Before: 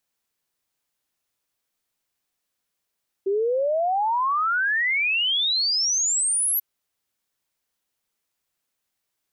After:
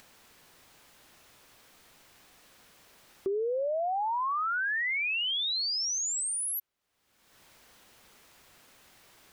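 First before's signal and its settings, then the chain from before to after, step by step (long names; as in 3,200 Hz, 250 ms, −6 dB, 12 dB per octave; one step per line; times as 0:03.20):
exponential sine sweep 380 Hz → 12,000 Hz 3.34 s −19.5 dBFS
upward compression, threshold −31 dBFS
high-shelf EQ 4,800 Hz −10.5 dB
downward compressor, threshold −29 dBFS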